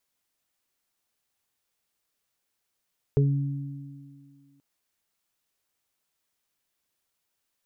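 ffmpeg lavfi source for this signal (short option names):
-f lavfi -i "aevalsrc='0.141*pow(10,-3*t/1.83)*sin(2*PI*140*t)+0.0316*pow(10,-3*t/2.82)*sin(2*PI*280*t)+0.1*pow(10,-3*t/0.24)*sin(2*PI*420*t)':d=1.43:s=44100"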